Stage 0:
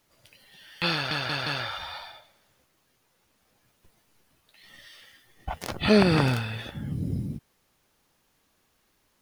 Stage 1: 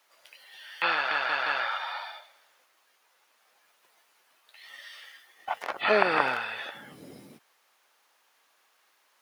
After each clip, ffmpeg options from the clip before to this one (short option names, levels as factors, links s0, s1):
-filter_complex "[0:a]acrossover=split=2700[s0][s1];[s1]acompressor=threshold=0.00398:ratio=4:attack=1:release=60[s2];[s0][s2]amix=inputs=2:normalize=0,highpass=630,equalizer=f=1300:w=0.37:g=6"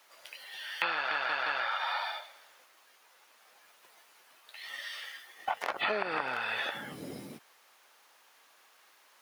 -af "acompressor=threshold=0.0224:ratio=12,volume=1.78"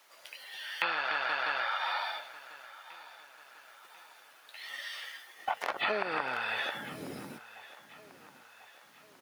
-af "aecho=1:1:1043|2086|3129|4172:0.126|0.0629|0.0315|0.0157"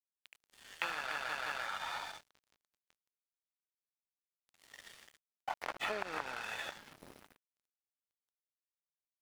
-af "aeval=exprs='sgn(val(0))*max(abs(val(0))-0.01,0)':c=same,volume=0.596"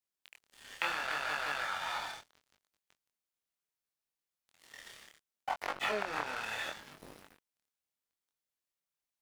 -af "flanger=delay=20:depth=7.6:speed=0.71,volume=2.11"